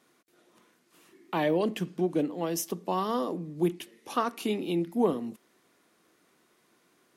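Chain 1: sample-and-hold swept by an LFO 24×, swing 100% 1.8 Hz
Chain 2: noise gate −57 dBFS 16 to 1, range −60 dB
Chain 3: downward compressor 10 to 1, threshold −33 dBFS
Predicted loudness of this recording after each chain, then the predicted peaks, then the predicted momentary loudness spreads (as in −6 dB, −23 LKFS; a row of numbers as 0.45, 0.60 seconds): −30.0, −30.0, −38.5 LKFS; −14.0, −13.5, −21.0 dBFS; 7, 7, 6 LU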